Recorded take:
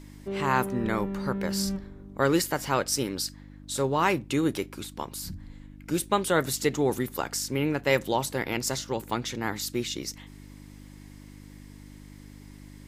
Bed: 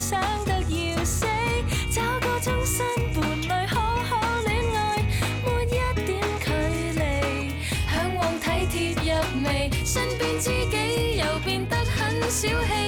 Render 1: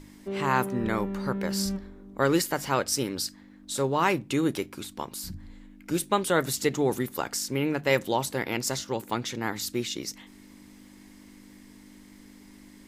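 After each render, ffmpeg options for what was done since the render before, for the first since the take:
ffmpeg -i in.wav -af "bandreject=frequency=50:width_type=h:width=4,bandreject=frequency=100:width_type=h:width=4,bandreject=frequency=150:width_type=h:width=4" out.wav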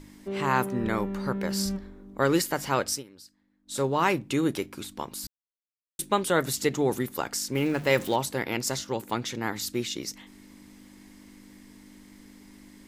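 ffmpeg -i in.wav -filter_complex "[0:a]asettb=1/sr,asplit=3[link_01][link_02][link_03];[link_01]atrim=end=7.554[link_04];[link_02]atrim=start=7.55:end=8.16,asetpts=PTS-STARTPTS,afade=type=in:duration=0.004:curve=qsin,afade=type=out:start_time=0.606:duration=0.004:curve=qsin,aeval=exprs='val(0)+0.5*0.0141*sgn(val(0))':channel_layout=same[link_05];[link_03]atrim=start=8.156[link_06];[link_04][link_05]acrossfade=duration=0.004:curve1=hsin:curve2=qsin[link_07];[link_07][link_06]acrossfade=duration=0.004:curve1=qsin:curve2=hsin,asplit=5[link_08][link_09][link_10][link_11][link_12];[link_08]atrim=end=3.03,asetpts=PTS-STARTPTS,afade=type=out:start_time=2.9:duration=0.13:silence=0.112202[link_13];[link_09]atrim=start=3.03:end=3.65,asetpts=PTS-STARTPTS,volume=-19dB[link_14];[link_10]atrim=start=3.65:end=5.27,asetpts=PTS-STARTPTS,afade=type=in:duration=0.13:silence=0.112202,afade=type=out:start_time=1.616:duration=0.004:curve=hsin[link_15];[link_11]atrim=start=5.27:end=5.99,asetpts=PTS-STARTPTS,volume=0[link_16];[link_12]atrim=start=5.99,asetpts=PTS-STARTPTS,afade=type=in:duration=0.004:curve=hsin[link_17];[link_13][link_14][link_15][link_16][link_17]concat=n=5:v=0:a=1" out.wav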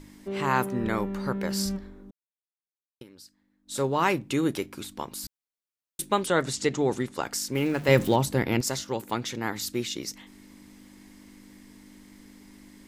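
ffmpeg -i in.wav -filter_complex "[0:a]asettb=1/sr,asplit=3[link_01][link_02][link_03];[link_01]atrim=end=6.264[link_04];[link_02]atrim=start=6.26:end=7.23,asetpts=PTS-STARTPTS,afade=type=in:duration=0.004:curve=qsin,afade=type=out:start_time=0.966:duration=0.004:curve=qsin,lowpass=frequency=8600:width=0.5412,lowpass=frequency=8600:width=1.3066[link_05];[link_03]atrim=start=7.226[link_06];[link_04][link_05]acrossfade=duration=0.004:curve1=hsin:curve2=qsin[link_07];[link_07][link_06]acrossfade=duration=0.004:curve1=qsin:curve2=hsin,asettb=1/sr,asplit=3[link_08][link_09][link_10];[link_08]atrim=end=7.884[link_11];[link_09]atrim=start=7.88:end=8.61,asetpts=PTS-STARTPTS,afade=type=in:duration=0.004:curve=qsin,afade=type=out:start_time=0.726:duration=0.004:curve=qsin,lowshelf=frequency=290:gain=12[link_12];[link_10]atrim=start=8.606[link_13];[link_11][link_12]acrossfade=duration=0.004:curve1=hsin:curve2=qsin[link_14];[link_14][link_13]acrossfade=duration=0.004:curve1=qsin:curve2=hsin,asplit=3[link_15][link_16][link_17];[link_15]atrim=end=2.11,asetpts=PTS-STARTPTS,afade=type=out:start_time=2.106:duration=0.004:curve=hsin[link_18];[link_16]atrim=start=2.11:end=3.01,asetpts=PTS-STARTPTS,volume=0[link_19];[link_17]atrim=start=3.01,asetpts=PTS-STARTPTS,afade=type=in:duration=0.004:curve=hsin[link_20];[link_18][link_19][link_20]concat=n=3:v=0:a=1" out.wav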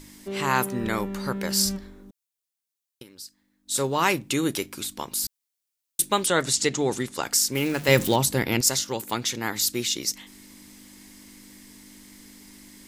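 ffmpeg -i in.wav -af "highshelf=frequency=2900:gain=11.5" out.wav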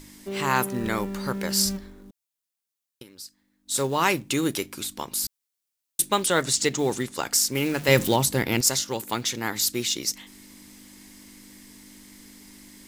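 ffmpeg -i in.wav -af "acrusher=bits=6:mode=log:mix=0:aa=0.000001" out.wav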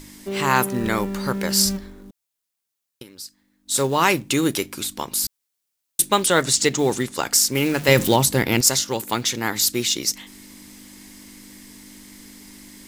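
ffmpeg -i in.wav -af "volume=4.5dB,alimiter=limit=-2dB:level=0:latency=1" out.wav

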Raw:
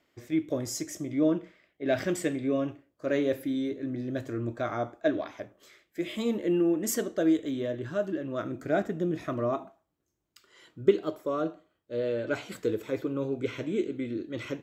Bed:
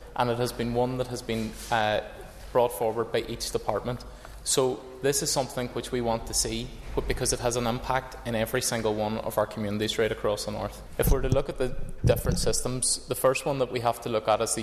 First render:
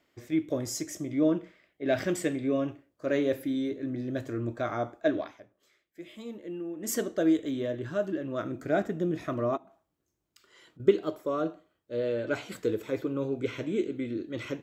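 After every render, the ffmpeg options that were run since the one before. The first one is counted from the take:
ffmpeg -i in.wav -filter_complex "[0:a]asettb=1/sr,asplit=3[link_01][link_02][link_03];[link_01]atrim=end=9.574[link_04];[link_02]atrim=start=9.57:end=10.8,asetpts=PTS-STARTPTS,afade=type=in:duration=0.004:curve=qsin,afade=type=out:start_time=1.226:duration=0.004:curve=qsin,acompressor=threshold=-52dB:ratio=6:attack=3.2:release=140:knee=1:detection=peak[link_05];[link_03]atrim=start=10.796[link_06];[link_04][link_05]acrossfade=duration=0.004:curve1=hsin:curve2=qsin[link_07];[link_07][link_06]acrossfade=duration=0.004:curve1=qsin:curve2=hsin,asplit=3[link_08][link_09][link_10];[link_08]atrim=end=5.4,asetpts=PTS-STARTPTS,afade=type=out:start_time=5.2:duration=0.2:silence=0.251189[link_11];[link_09]atrim=start=5.4:end=6.76,asetpts=PTS-STARTPTS,volume=-12dB[link_12];[link_10]atrim=start=6.76,asetpts=PTS-STARTPTS,afade=type=in:duration=0.2:silence=0.251189[link_13];[link_11][link_12][link_13]concat=n=3:v=0:a=1" out.wav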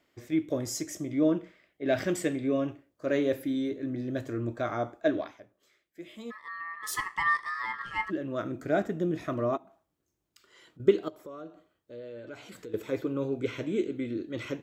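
ffmpeg -i in.wav -filter_complex "[0:a]asplit=3[link_01][link_02][link_03];[link_01]afade=type=out:start_time=6.3:duration=0.02[link_04];[link_02]aeval=exprs='val(0)*sin(2*PI*1500*n/s)':channel_layout=same,afade=type=in:start_time=6.3:duration=0.02,afade=type=out:start_time=8.09:duration=0.02[link_05];[link_03]afade=type=in:start_time=8.09:duration=0.02[link_06];[link_04][link_05][link_06]amix=inputs=3:normalize=0,asettb=1/sr,asplit=3[link_07][link_08][link_09];[link_07]atrim=end=11.084[link_10];[link_08]atrim=start=11.08:end=12.74,asetpts=PTS-STARTPTS,afade=type=in:duration=0.004:curve=qsin,afade=type=out:start_time=1.656:duration=0.004:curve=qsin,acompressor=threshold=-46dB:ratio=2.5:attack=3.2:release=140:knee=1:detection=peak[link_11];[link_09]atrim=start=12.736[link_12];[link_10][link_11]acrossfade=duration=0.004:curve1=hsin:curve2=qsin[link_13];[link_13][link_12]acrossfade=duration=0.004:curve1=qsin:curve2=hsin" out.wav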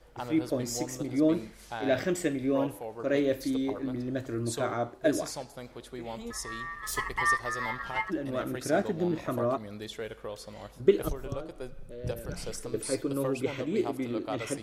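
ffmpeg -i in.wav -i bed.wav -filter_complex "[1:a]volume=-12.5dB[link_01];[0:a][link_01]amix=inputs=2:normalize=0" out.wav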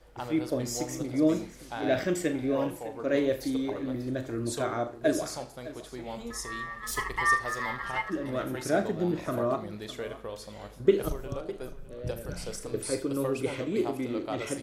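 ffmpeg -i in.wav -filter_complex "[0:a]asplit=2[link_01][link_02];[link_02]adelay=39,volume=-11.5dB[link_03];[link_01][link_03]amix=inputs=2:normalize=0,aecho=1:1:79|607:0.126|0.15" out.wav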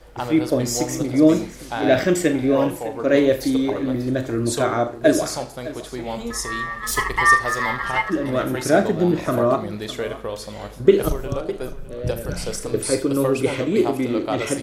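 ffmpeg -i in.wav -af "volume=10dB,alimiter=limit=-2dB:level=0:latency=1" out.wav

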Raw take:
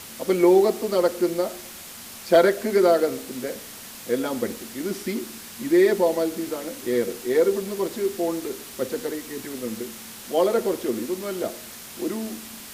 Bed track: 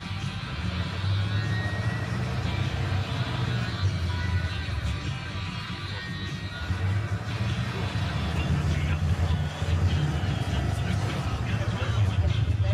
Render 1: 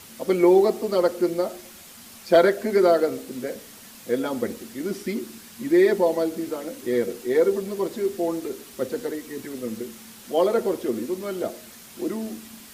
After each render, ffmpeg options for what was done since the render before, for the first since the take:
ffmpeg -i in.wav -af "afftdn=noise_reduction=6:noise_floor=-40" out.wav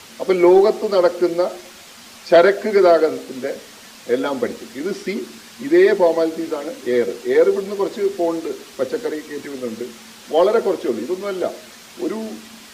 ffmpeg -i in.wav -filter_complex "[0:a]acrossover=split=330|7100[link_01][link_02][link_03];[link_02]acontrast=88[link_04];[link_03]alimiter=level_in=21.5dB:limit=-24dB:level=0:latency=1,volume=-21.5dB[link_05];[link_01][link_04][link_05]amix=inputs=3:normalize=0" out.wav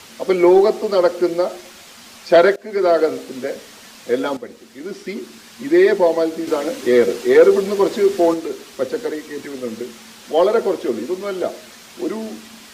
ffmpeg -i in.wav -filter_complex "[0:a]asettb=1/sr,asplit=3[link_01][link_02][link_03];[link_01]atrim=end=6.474[link_04];[link_02]atrim=start=6.47:end=8.34,asetpts=PTS-STARTPTS,afade=type=in:duration=0.004:curve=qsin,afade=type=out:start_time=1.866:duration=0.004:curve=qsin,acontrast=32[link_05];[link_03]atrim=start=8.336[link_06];[link_04][link_05]acrossfade=duration=0.004:curve1=hsin:curve2=qsin[link_07];[link_07][link_06]acrossfade=duration=0.004:curve1=qsin:curve2=hsin,asplit=3[link_08][link_09][link_10];[link_08]atrim=end=2.56,asetpts=PTS-STARTPTS,afade=type=out:start_time=2.556:duration=0.004:curve=hsin:silence=0.0794328[link_11];[link_09]atrim=start=2.56:end=4.37,asetpts=PTS-STARTPTS,afade=type=in:duration=0.47:silence=0.0794328,afade=type=out:start_time=1.806:duration=0.004:curve=hsin:silence=0.223872[link_12];[link_10]atrim=start=4.37,asetpts=PTS-STARTPTS,afade=type=in:duration=1.33:silence=0.223872[link_13];[link_11][link_12][link_13]concat=n=3:v=0:a=1" out.wav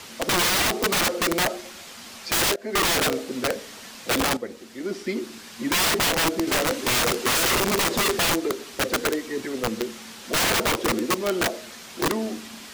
ffmpeg -i in.wav -af "aeval=exprs='(mod(6.68*val(0)+1,2)-1)/6.68':channel_layout=same" out.wav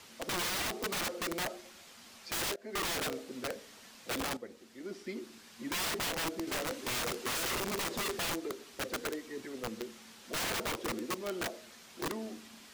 ffmpeg -i in.wav -af "volume=-13dB" out.wav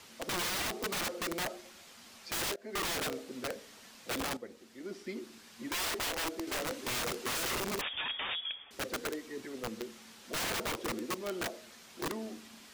ffmpeg -i in.wav -filter_complex "[0:a]asettb=1/sr,asplit=3[link_01][link_02][link_03];[link_01]atrim=end=5.664[link_04];[link_02]atrim=start=5.66:end=6.59,asetpts=PTS-STARTPTS,afade=type=in:duration=0.004:curve=qsin,afade=type=out:start_time=0.926:duration=0.004:curve=qsin,equalizer=frequency=170:width_type=o:width=0.52:gain=-14.5[link_05];[link_03]atrim=start=6.586[link_06];[link_04][link_05]acrossfade=duration=0.004:curve1=hsin:curve2=qsin[link_07];[link_07][link_06]acrossfade=duration=0.004:curve1=qsin:curve2=hsin,asettb=1/sr,asplit=3[link_08][link_09][link_10];[link_08]atrim=end=7.814[link_11];[link_09]atrim=start=7.81:end=8.71,asetpts=PTS-STARTPTS,afade=type=in:duration=0.004:curve=qsin,afade=type=out:start_time=0.896:duration=0.004:curve=qsin,lowpass=frequency=3100:width_type=q:width=0.5098,lowpass=frequency=3100:width_type=q:width=0.6013,lowpass=frequency=3100:width_type=q:width=0.9,lowpass=frequency=3100:width_type=q:width=2.563,afreqshift=-3700[link_12];[link_10]atrim=start=8.706[link_13];[link_11][link_12]acrossfade=duration=0.004:curve1=hsin:curve2=qsin[link_14];[link_14][link_13]acrossfade=duration=0.004:curve1=qsin:curve2=hsin" out.wav

